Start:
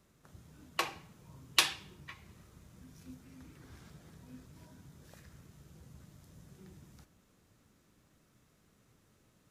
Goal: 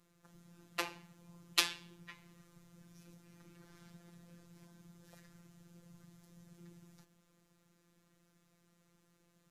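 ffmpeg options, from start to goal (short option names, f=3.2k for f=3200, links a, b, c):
-af "afftfilt=real='hypot(re,im)*cos(PI*b)':imag='0':win_size=1024:overlap=0.75"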